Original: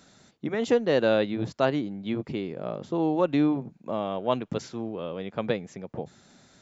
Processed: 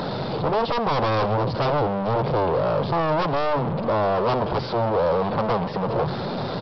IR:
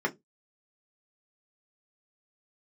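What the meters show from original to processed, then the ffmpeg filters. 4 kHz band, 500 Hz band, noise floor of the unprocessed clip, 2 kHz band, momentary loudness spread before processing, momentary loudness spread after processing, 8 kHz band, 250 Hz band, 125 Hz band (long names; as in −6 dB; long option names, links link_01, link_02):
+6.0 dB, +5.0 dB, −60 dBFS, +4.5 dB, 12 LU, 4 LU, can't be measured, 0.0 dB, +10.0 dB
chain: -filter_complex "[0:a]aeval=exprs='val(0)+0.5*0.0473*sgn(val(0))':channel_layout=same,highpass=43,afftfilt=real='re*gte(hypot(re,im),0.00891)':imag='im*gte(hypot(re,im),0.00891)':win_size=1024:overlap=0.75,equalizer=frequency=210:width=0.32:gain=8,aeval=exprs='(tanh(6.31*val(0)+0.75)-tanh(0.75))/6.31':channel_layout=same,acompressor=mode=upward:threshold=-37dB:ratio=2.5,aresample=11025,aeval=exprs='0.0668*(abs(mod(val(0)/0.0668+3,4)-2)-1)':channel_layout=same,aresample=44100,equalizer=frequency=125:width_type=o:width=1:gain=8,equalizer=frequency=250:width_type=o:width=1:gain=-4,equalizer=frequency=500:width_type=o:width=1:gain=9,equalizer=frequency=1000:width_type=o:width=1:gain=10,equalizer=frequency=2000:width_type=o:width=1:gain=-4,equalizer=frequency=4000:width_type=o:width=1:gain=3,asplit=2[link_01][link_02];[link_02]aecho=0:1:85|170|255:0.1|0.032|0.0102[link_03];[link_01][link_03]amix=inputs=2:normalize=0"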